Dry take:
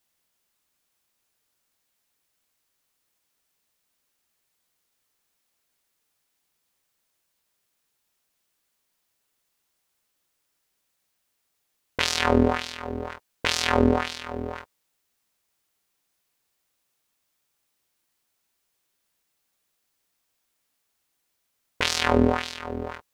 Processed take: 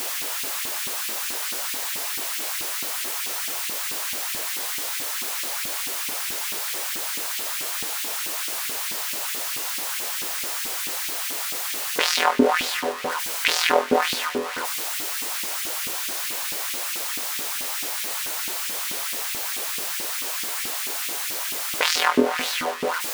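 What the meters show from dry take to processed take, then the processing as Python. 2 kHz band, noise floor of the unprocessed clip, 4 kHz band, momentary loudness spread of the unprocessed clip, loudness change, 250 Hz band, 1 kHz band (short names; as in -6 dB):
+7.0 dB, -76 dBFS, +8.0 dB, 14 LU, 0.0 dB, -1.0 dB, +5.5 dB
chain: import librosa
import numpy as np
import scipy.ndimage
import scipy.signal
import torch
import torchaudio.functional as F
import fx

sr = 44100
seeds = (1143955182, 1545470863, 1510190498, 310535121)

y = x + 0.5 * 10.0 ** (-22.5 / 20.0) * np.sign(x)
y = fx.filter_lfo_highpass(y, sr, shape='saw_up', hz=4.6, low_hz=240.0, high_hz=2700.0, q=1.8)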